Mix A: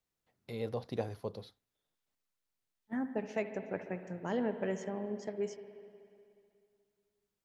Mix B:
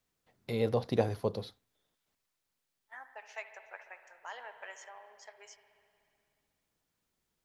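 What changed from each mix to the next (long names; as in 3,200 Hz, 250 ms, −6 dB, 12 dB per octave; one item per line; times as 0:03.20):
first voice +7.5 dB
second voice: add high-pass filter 860 Hz 24 dB per octave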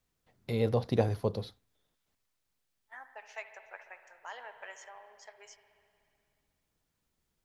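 master: add low-shelf EQ 120 Hz +8.5 dB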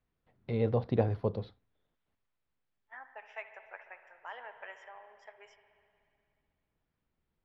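first voice: add high-frequency loss of the air 340 metres
second voice: add Savitzky-Golay smoothing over 25 samples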